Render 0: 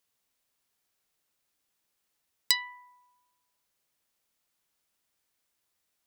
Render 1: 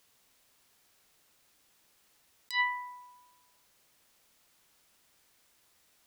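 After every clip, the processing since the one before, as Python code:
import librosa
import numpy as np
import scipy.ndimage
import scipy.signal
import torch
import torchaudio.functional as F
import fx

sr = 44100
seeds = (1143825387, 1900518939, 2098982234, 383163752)

y = fx.high_shelf(x, sr, hz=8800.0, db=-3.5)
y = fx.over_compress(y, sr, threshold_db=-38.0, ratio=-1.0)
y = y * librosa.db_to_amplitude(6.5)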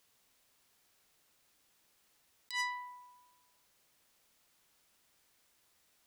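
y = fx.transformer_sat(x, sr, knee_hz=3600.0)
y = y * librosa.db_to_amplitude(-4.0)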